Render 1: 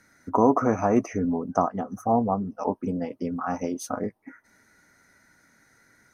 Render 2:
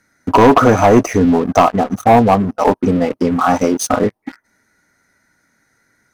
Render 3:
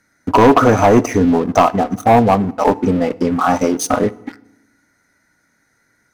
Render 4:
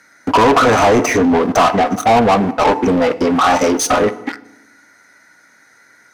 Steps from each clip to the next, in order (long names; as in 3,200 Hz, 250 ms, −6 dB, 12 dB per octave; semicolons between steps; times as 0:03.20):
dynamic equaliser 210 Hz, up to −4 dB, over −33 dBFS, Q 1.3; leveller curve on the samples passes 3; level +5.5 dB
feedback delay network reverb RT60 0.89 s, low-frequency decay 1.4×, high-frequency decay 0.8×, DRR 18 dB; level −1 dB
mid-hump overdrive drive 24 dB, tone 5,300 Hz, clips at −1 dBFS; level −4 dB